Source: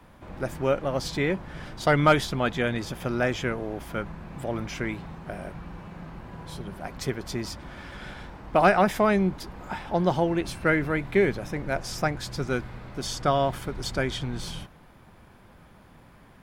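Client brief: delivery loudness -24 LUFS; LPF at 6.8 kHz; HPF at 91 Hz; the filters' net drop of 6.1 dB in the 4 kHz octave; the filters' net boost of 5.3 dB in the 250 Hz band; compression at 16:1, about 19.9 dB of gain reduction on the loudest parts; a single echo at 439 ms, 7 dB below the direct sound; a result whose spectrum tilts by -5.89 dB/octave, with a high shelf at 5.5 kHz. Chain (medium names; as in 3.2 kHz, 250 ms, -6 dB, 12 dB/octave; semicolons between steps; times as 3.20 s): high-pass 91 Hz; low-pass 6.8 kHz; peaking EQ 250 Hz +7.5 dB; peaking EQ 4 kHz -6 dB; treble shelf 5.5 kHz -3.5 dB; compression 16:1, threshold -33 dBFS; delay 439 ms -7 dB; trim +14.5 dB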